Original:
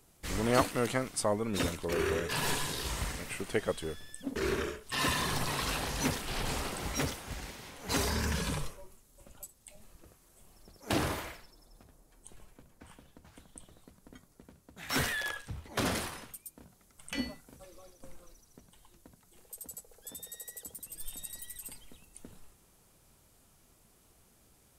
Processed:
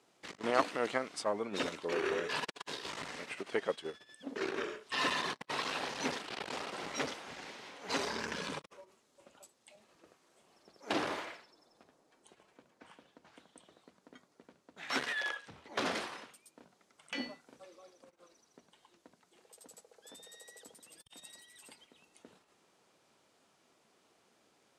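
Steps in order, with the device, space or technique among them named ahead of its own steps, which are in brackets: public-address speaker with an overloaded transformer (transformer saturation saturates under 590 Hz; band-pass 300–5000 Hz)

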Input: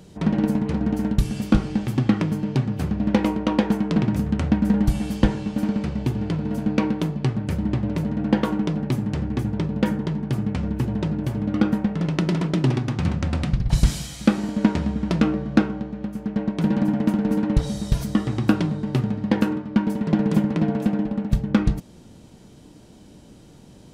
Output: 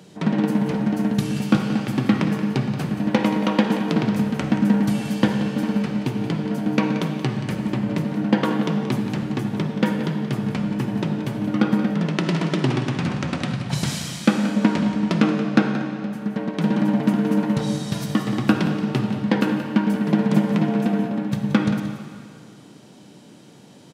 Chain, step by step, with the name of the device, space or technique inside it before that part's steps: PA in a hall (high-pass 130 Hz 24 dB/octave; peaking EQ 2.2 kHz +4 dB 2.9 oct; delay 178 ms -12 dB; reverberation RT60 2.3 s, pre-delay 46 ms, DRR 6.5 dB)

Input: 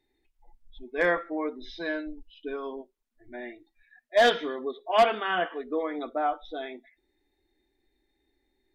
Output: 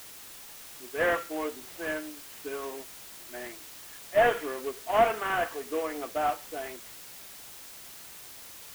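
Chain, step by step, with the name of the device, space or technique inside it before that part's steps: army field radio (band-pass 340–3100 Hz; CVSD coder 16 kbps; white noise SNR 14 dB)

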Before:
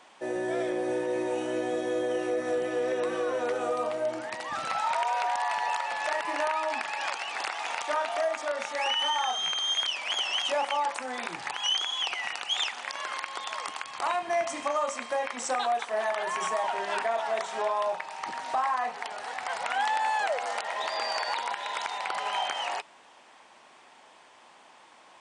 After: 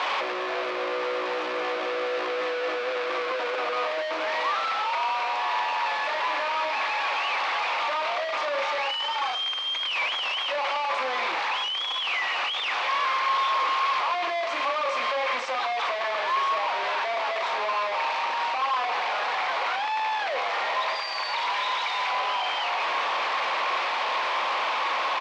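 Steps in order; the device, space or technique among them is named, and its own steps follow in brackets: 20.95–22.12 s: pre-emphasis filter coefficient 0.8; home computer beeper (one-bit comparator; cabinet simulation 520–4300 Hz, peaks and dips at 530 Hz +5 dB, 1.1 kHz +8 dB, 2.3 kHz +5 dB); doubling 38 ms -13 dB; trim +2 dB

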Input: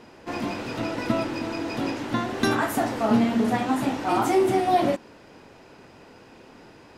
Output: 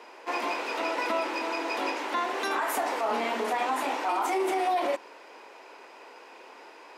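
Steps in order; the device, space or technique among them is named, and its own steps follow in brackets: laptop speaker (high-pass 380 Hz 24 dB/octave; peaking EQ 980 Hz +6.5 dB 0.49 oct; peaking EQ 2.3 kHz +5 dB 0.55 oct; peak limiter -19.5 dBFS, peak gain reduction 10 dB)

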